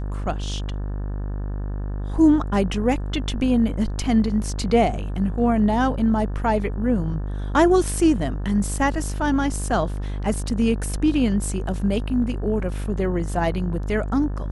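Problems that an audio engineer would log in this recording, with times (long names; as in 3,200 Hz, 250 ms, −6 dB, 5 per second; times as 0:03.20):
mains buzz 50 Hz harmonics 36 −27 dBFS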